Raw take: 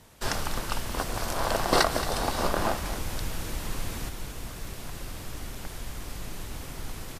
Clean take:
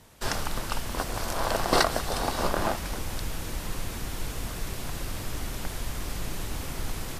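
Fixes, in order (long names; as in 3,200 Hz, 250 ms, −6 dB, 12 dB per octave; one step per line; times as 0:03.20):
repair the gap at 0:04.65/0:05.55, 2.6 ms
echo removal 223 ms −13 dB
level correction +4.5 dB, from 0:04.09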